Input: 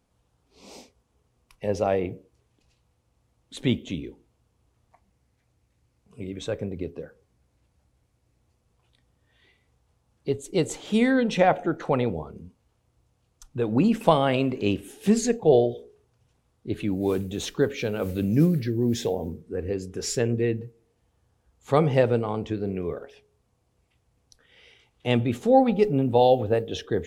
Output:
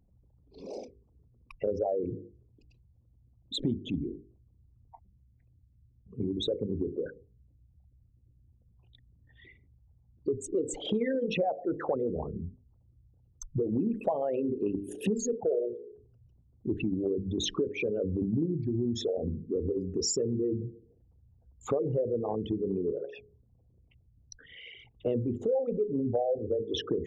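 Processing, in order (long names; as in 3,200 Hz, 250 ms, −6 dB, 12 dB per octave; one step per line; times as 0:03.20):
spectral envelope exaggerated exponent 3
mains-hum notches 50/100/150/200/250/300/350/400/450/500 Hz
downward compressor 6 to 1, threshold −34 dBFS, peak gain reduction 19 dB
level +6.5 dB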